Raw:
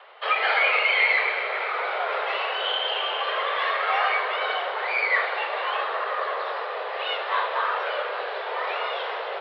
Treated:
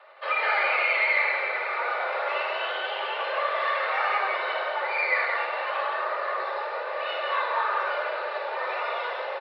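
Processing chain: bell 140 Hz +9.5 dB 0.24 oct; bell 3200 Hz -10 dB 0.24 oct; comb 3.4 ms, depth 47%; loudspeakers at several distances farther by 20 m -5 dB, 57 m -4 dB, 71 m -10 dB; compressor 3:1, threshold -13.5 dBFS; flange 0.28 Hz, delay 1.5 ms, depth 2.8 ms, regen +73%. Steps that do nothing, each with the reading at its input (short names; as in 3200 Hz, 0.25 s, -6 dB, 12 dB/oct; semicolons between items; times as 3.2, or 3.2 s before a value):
bell 140 Hz: input band starts at 340 Hz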